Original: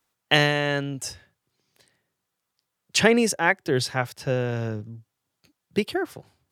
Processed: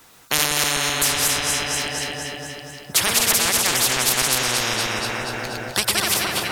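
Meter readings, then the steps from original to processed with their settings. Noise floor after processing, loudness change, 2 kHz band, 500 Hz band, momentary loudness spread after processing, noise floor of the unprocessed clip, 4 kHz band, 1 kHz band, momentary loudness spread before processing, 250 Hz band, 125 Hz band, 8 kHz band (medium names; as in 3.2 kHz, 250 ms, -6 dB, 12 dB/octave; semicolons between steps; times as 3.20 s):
-42 dBFS, +4.5 dB, +3.5 dB, -3.5 dB, 11 LU, -82 dBFS, +9.5 dB, +4.5 dB, 14 LU, -4.0 dB, -3.5 dB, +16.0 dB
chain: backward echo that repeats 128 ms, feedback 45%, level -1 dB; echo whose repeats swap between lows and highs 120 ms, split 1.1 kHz, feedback 77%, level -11 dB; spectrum-flattening compressor 10:1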